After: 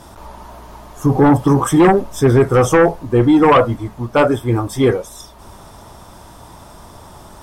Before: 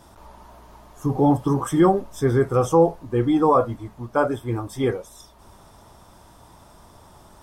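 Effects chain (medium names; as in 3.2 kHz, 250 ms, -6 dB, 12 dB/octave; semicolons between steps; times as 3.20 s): sine folder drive 6 dB, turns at -5.5 dBFS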